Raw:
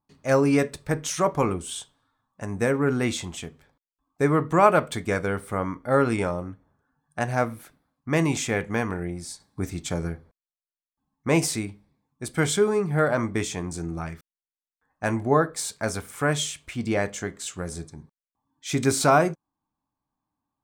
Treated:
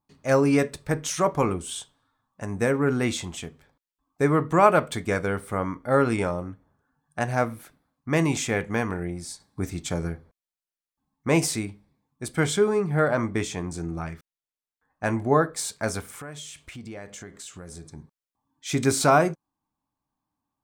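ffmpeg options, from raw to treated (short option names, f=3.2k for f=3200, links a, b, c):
-filter_complex "[0:a]asettb=1/sr,asplit=3[a][b][c];[a]atrim=end=12.364[d];[b]atrim=start=12.36:end=15.2,asetpts=PTS-STARTPTS,afade=t=in:d=0.004:c=qsin,afade=t=out:st=2.836:d=0.004:c=qsin,highshelf=f=5.9k:g=-4.5[e];[c]atrim=start=15.196[f];[d][e]acrossfade=d=0.004:c1=hsin:c2=qsin[g];[g][f]acrossfade=d=0.004:c1=qsin:c2=hsin,asettb=1/sr,asplit=3[h][i][j];[h]atrim=end=16.154[k];[i]atrim=start=16.15:end=17.86,asetpts=PTS-STARTPTS,afade=t=in:d=0.004:c=qsin,afade=t=out:st=1.706:d=0.004:c=qsin,acompressor=threshold=-38dB:ratio=4:attack=3.2:release=140:knee=1:detection=peak[l];[j]atrim=start=17.856[m];[k][l]acrossfade=d=0.004:c1=hsin:c2=qsin[n];[n][m]acrossfade=d=0.004:c1=qsin:c2=hsin"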